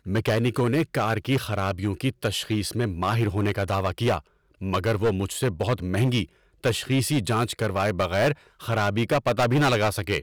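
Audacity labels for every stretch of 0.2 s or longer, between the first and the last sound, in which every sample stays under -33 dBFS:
4.190000	4.620000	silence
6.240000	6.640000	silence
8.330000	8.630000	silence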